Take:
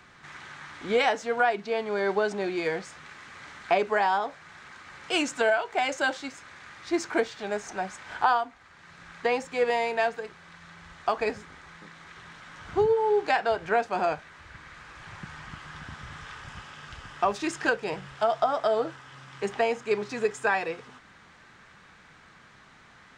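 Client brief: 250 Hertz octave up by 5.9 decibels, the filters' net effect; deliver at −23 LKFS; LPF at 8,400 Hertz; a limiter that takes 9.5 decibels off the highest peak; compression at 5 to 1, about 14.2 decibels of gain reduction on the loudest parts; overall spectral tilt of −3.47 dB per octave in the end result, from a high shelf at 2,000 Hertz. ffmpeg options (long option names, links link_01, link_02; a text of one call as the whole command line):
ffmpeg -i in.wav -af "lowpass=8400,equalizer=frequency=250:width_type=o:gain=8,highshelf=frequency=2000:gain=8.5,acompressor=threshold=-33dB:ratio=5,volume=15.5dB,alimiter=limit=-11.5dB:level=0:latency=1" out.wav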